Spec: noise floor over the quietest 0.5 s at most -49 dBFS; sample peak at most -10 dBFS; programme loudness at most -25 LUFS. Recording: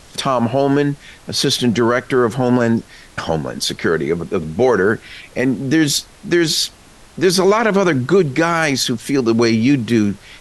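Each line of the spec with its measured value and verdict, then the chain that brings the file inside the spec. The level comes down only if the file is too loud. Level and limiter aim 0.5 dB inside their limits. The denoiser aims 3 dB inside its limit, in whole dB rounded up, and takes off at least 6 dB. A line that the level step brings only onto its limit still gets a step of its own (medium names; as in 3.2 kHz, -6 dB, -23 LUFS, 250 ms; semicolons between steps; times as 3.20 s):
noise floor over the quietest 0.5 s -43 dBFS: fail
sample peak -4.5 dBFS: fail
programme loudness -16.5 LUFS: fail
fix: trim -9 dB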